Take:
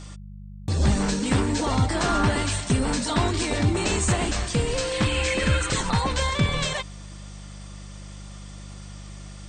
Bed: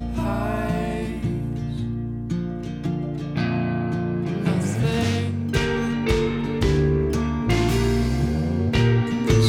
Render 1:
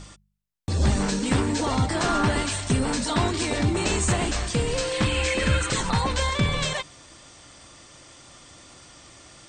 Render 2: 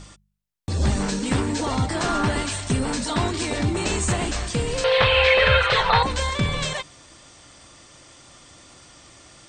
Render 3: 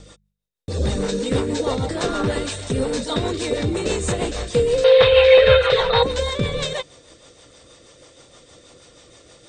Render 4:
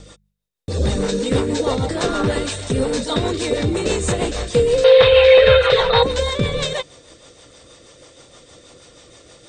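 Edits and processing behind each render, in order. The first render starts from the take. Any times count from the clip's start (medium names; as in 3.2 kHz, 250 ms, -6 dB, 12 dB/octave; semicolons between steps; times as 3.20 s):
de-hum 50 Hz, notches 4
4.84–6.03 s: FFT filter 130 Hz 0 dB, 300 Hz -18 dB, 460 Hz +10 dB, 3.8 kHz +9 dB, 7.1 kHz -16 dB
rotary cabinet horn 6.3 Hz; small resonant body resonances 480/3700 Hz, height 14 dB, ringing for 30 ms
trim +2.5 dB; peak limiter -2 dBFS, peak gain reduction 2.5 dB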